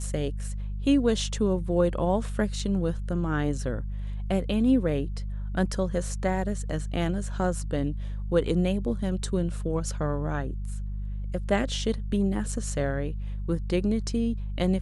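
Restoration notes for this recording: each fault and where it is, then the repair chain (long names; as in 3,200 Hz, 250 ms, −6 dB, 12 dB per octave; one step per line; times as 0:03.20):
mains hum 50 Hz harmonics 4 −32 dBFS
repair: hum removal 50 Hz, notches 4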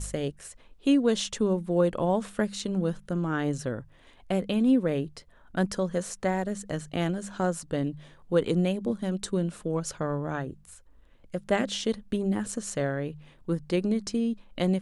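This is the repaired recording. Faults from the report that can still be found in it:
none of them is left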